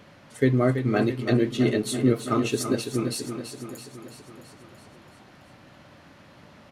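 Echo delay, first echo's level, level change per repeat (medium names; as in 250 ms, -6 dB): 332 ms, -9.0 dB, -4.5 dB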